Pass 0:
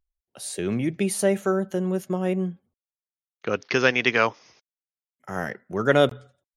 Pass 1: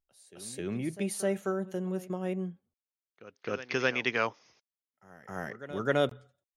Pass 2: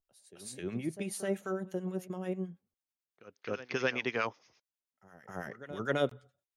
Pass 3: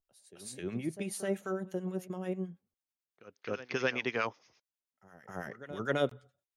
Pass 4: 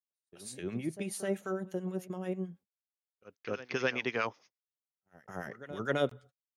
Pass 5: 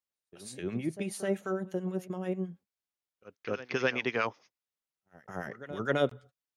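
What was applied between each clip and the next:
backwards echo 261 ms −16 dB; level −8.5 dB
two-band tremolo in antiphase 9.1 Hz, depth 70%, crossover 1,100 Hz
no processing that can be heard
noise gate −55 dBFS, range −36 dB
high-shelf EQ 6,700 Hz −5.5 dB; level +2.5 dB

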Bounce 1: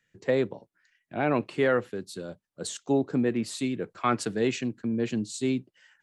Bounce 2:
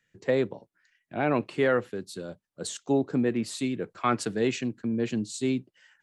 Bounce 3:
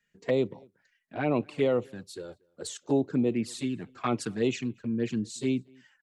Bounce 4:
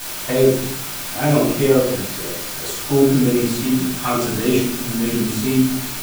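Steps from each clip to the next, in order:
no processing that can be heard
flanger swept by the level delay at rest 4.9 ms, full sweep at −21.5 dBFS; slap from a distant wall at 40 metres, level −29 dB
bit-depth reduction 6 bits, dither triangular; rectangular room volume 970 cubic metres, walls furnished, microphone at 8.4 metres

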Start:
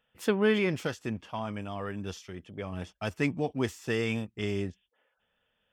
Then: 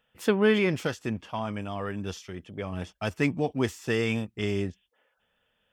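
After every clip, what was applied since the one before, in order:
de-essing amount 85%
level +3 dB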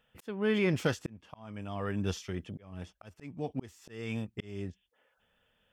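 low-shelf EQ 210 Hz +4.5 dB
volume swells 743 ms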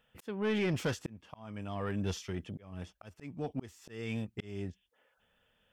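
soft clipping −25.5 dBFS, distortion −13 dB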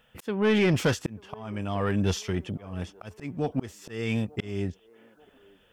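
delay with a band-pass on its return 889 ms, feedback 51%, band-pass 640 Hz, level −22.5 dB
level +9 dB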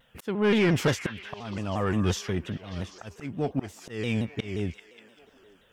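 echo through a band-pass that steps 197 ms, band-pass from 1,300 Hz, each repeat 0.7 octaves, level −7 dB
pitch modulation by a square or saw wave saw down 5.7 Hz, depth 160 cents

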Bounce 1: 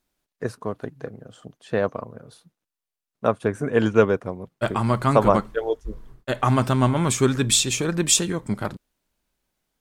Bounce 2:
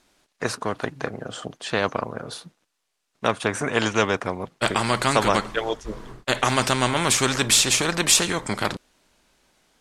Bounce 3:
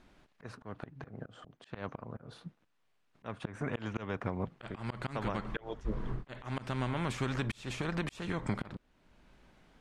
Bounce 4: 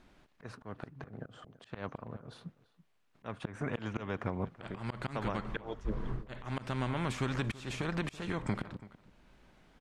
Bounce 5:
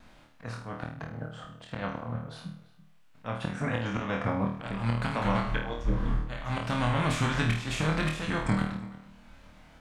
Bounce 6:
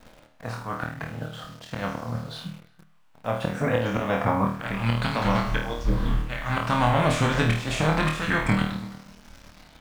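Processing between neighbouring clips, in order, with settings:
low-pass filter 8,500 Hz 12 dB per octave; low-shelf EQ 180 Hz −9 dB; every bin compressed towards the loudest bin 2 to 1
volume swells 724 ms; downward compressor 6 to 1, threshold −33 dBFS, peak gain reduction 15.5 dB; bass and treble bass +9 dB, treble −15 dB
slap from a distant wall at 57 metres, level −18 dB
pitch vibrato 3 Hz 50 cents; parametric band 380 Hz −13 dB 0.29 octaves; flutter between parallel walls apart 4.4 metres, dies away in 0.48 s; level +6 dB
in parallel at −4.5 dB: bit-depth reduction 8 bits, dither none; on the sum: auto-filter bell 0.27 Hz 500–5,700 Hz +8 dB

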